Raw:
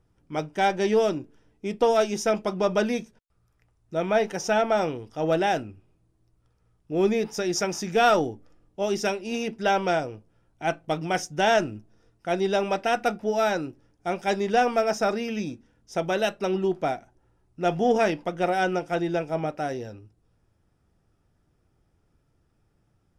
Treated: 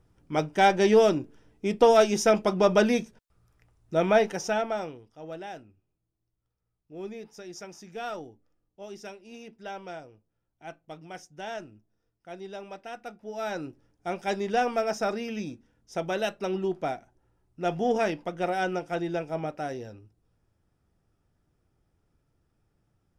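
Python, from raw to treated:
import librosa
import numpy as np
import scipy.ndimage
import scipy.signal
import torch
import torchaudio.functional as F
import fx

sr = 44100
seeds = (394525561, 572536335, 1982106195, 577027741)

y = fx.gain(x, sr, db=fx.line((4.09, 2.5), (4.71, -7.0), (5.2, -16.0), (13.17, -16.0), (13.66, -4.0)))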